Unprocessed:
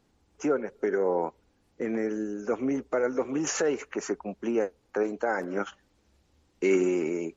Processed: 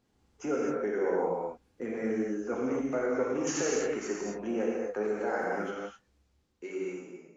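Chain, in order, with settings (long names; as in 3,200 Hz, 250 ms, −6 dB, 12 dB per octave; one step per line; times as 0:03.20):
fade-out on the ending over 2.09 s
reverb whose tail is shaped and stops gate 290 ms flat, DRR −4 dB
level −7 dB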